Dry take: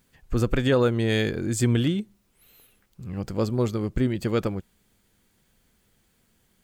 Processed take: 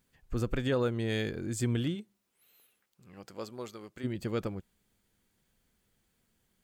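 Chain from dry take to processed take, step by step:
0:01.94–0:04.03: high-pass filter 310 Hz → 1,100 Hz 6 dB per octave
level −8.5 dB

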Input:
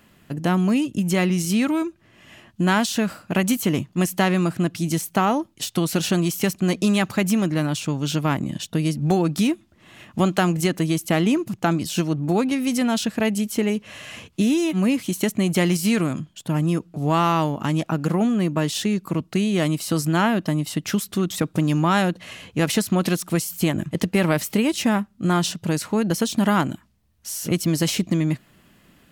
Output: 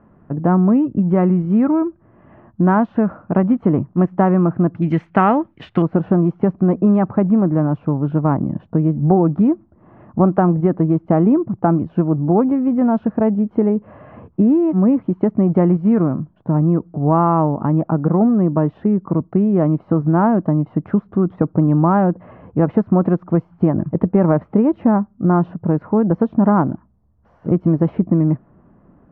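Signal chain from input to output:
low-pass filter 1,200 Hz 24 dB per octave, from 0:04.82 2,000 Hz, from 0:05.82 1,100 Hz
level +6 dB

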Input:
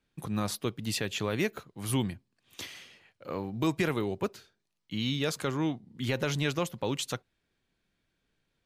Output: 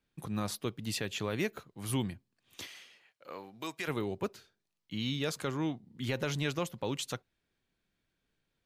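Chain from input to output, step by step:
0:02.65–0:03.87: high-pass filter 440 Hz → 1,300 Hz 6 dB per octave
level −3.5 dB

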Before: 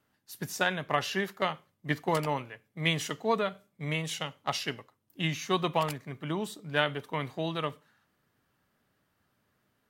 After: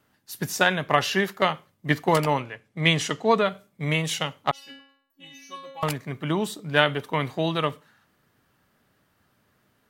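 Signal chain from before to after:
0:02.37–0:03.46: low-pass filter 9,300 Hz 12 dB per octave
0:04.51–0:05.83: stiff-string resonator 270 Hz, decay 0.68 s, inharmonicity 0.002
level +7.5 dB

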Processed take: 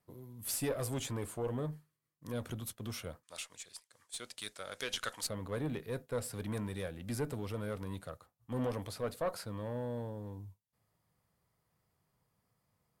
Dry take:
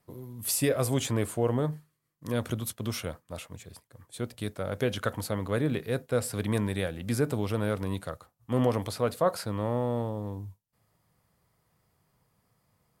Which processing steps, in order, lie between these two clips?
0:03.23–0:05.27: meter weighting curve ITU-R 468
tube saturation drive 19 dB, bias 0.45
level −6 dB

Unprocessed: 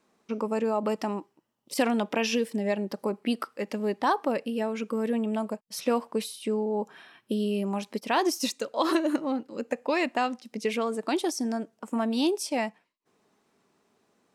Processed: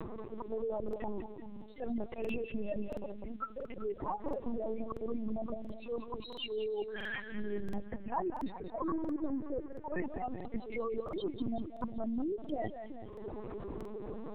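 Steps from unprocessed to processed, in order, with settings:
expanding power law on the bin magnitudes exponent 2.5
Bessel high-pass filter 180 Hz, order 8
upward compression, threshold −34 dBFS
volume swells 448 ms
brickwall limiter −27 dBFS, peak gain reduction 8 dB
downward compressor 10 to 1, threshold −42 dBFS, peak gain reduction 13 dB
surface crackle 480 per second −61 dBFS
0:07.83–0:10.03: low-pass with resonance 1,700 Hz, resonance Q 3
echo with a time of its own for lows and highs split 320 Hz, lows 388 ms, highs 191 ms, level −8 dB
linear-prediction vocoder at 8 kHz pitch kept
regular buffer underruns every 0.68 s, samples 2,048, repeat, from 0:00.84
level +8.5 dB

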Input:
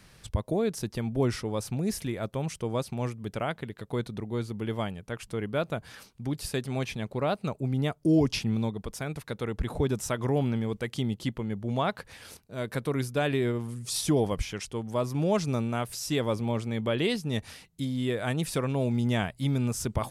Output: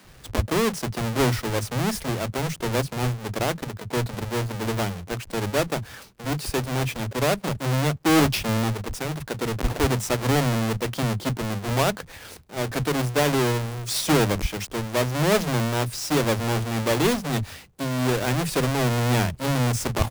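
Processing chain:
each half-wave held at its own peak
multiband delay without the direct sound highs, lows 40 ms, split 180 Hz
level +2 dB

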